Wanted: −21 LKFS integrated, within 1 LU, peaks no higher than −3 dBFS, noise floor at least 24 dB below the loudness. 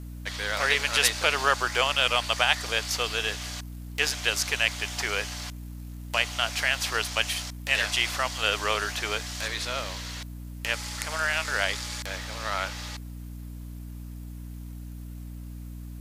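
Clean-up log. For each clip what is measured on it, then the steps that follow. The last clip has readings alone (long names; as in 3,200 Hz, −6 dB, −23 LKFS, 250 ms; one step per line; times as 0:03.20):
mains hum 60 Hz; hum harmonics up to 300 Hz; level of the hum −36 dBFS; integrated loudness −26.5 LKFS; sample peak −4.5 dBFS; target loudness −21.0 LKFS
→ hum removal 60 Hz, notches 5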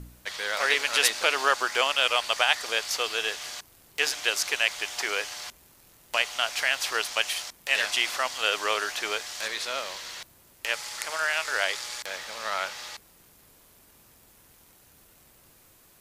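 mains hum none found; integrated loudness −26.5 LKFS; sample peak −4.5 dBFS; target loudness −21.0 LKFS
→ level +5.5 dB
brickwall limiter −3 dBFS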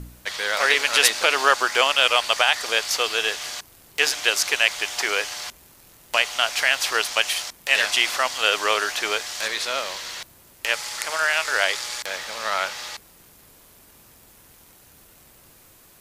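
integrated loudness −21.0 LKFS; sample peak −3.0 dBFS; background noise floor −52 dBFS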